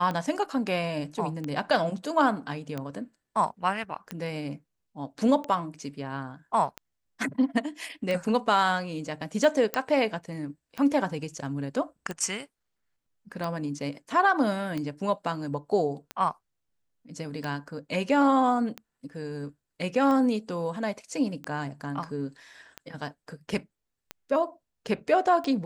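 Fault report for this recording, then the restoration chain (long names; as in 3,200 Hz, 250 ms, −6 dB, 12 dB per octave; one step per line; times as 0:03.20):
scratch tick 45 rpm −19 dBFS
0:09.74: click −11 dBFS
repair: click removal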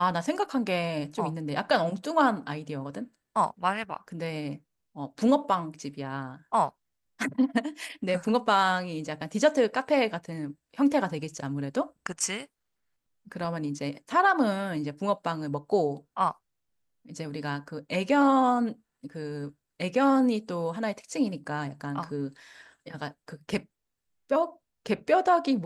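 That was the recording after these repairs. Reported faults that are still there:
none of them is left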